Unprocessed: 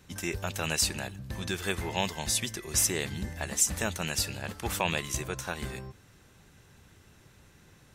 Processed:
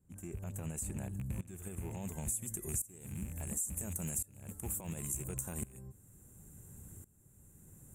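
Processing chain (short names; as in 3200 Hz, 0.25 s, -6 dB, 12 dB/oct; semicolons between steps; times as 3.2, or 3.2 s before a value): rattling part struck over -37 dBFS, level -22 dBFS; limiter -21 dBFS, peak gain reduction 10.5 dB; high shelf 4800 Hz -11.5 dB, from 1.13 s -5 dB, from 2.28 s +3 dB; tremolo saw up 0.71 Hz, depth 90%; EQ curve 190 Hz 0 dB, 5200 Hz -27 dB, 7400 Hz +5 dB; compressor 4:1, threshold -43 dBFS, peak gain reduction 15.5 dB; gain +6.5 dB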